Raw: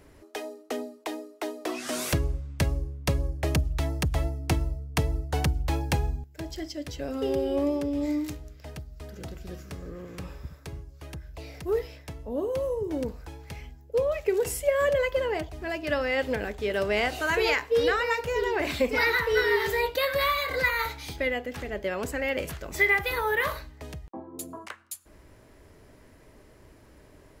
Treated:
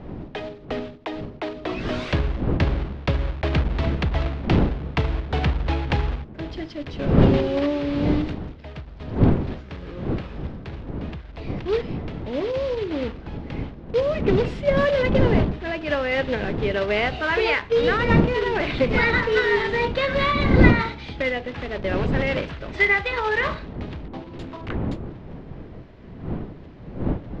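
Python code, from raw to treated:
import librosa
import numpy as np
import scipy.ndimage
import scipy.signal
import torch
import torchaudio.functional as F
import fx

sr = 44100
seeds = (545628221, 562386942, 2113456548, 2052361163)

y = fx.block_float(x, sr, bits=3)
y = fx.dmg_wind(y, sr, seeds[0], corner_hz=250.0, level_db=-30.0)
y = scipy.signal.sosfilt(scipy.signal.butter(4, 3800.0, 'lowpass', fs=sr, output='sos'), y)
y = y * 10.0 ** (3.5 / 20.0)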